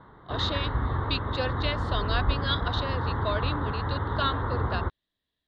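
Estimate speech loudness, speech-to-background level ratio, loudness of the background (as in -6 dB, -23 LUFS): -32.5 LUFS, -2.5 dB, -30.0 LUFS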